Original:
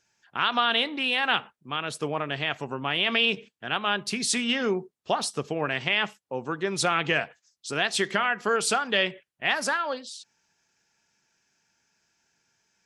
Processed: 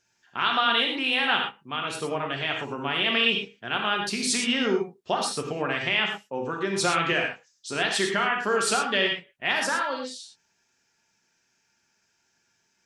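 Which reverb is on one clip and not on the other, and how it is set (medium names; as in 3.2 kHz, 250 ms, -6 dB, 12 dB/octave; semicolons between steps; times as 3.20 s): gated-style reverb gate 140 ms flat, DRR 1 dB; trim -1.5 dB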